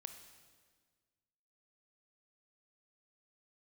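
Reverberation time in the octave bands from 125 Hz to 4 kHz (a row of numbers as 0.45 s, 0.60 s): 1.9 s, 1.8 s, 1.7 s, 1.5 s, 1.5 s, 1.5 s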